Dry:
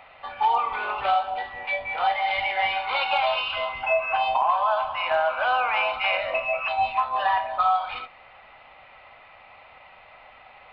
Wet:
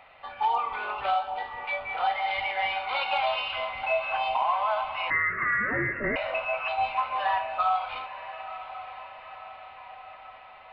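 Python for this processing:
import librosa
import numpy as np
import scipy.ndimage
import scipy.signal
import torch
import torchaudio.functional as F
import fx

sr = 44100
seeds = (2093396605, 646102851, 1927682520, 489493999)

y = fx.echo_diffused(x, sr, ms=986, feedback_pct=56, wet_db=-13)
y = fx.freq_invert(y, sr, carrier_hz=2700, at=(5.1, 6.16))
y = y * librosa.db_to_amplitude(-4.0)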